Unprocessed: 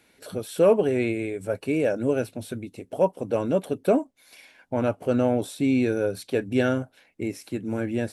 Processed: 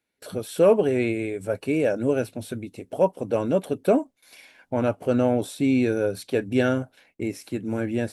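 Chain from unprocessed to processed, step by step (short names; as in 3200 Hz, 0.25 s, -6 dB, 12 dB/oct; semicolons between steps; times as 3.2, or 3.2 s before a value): gate with hold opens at -46 dBFS; gain +1 dB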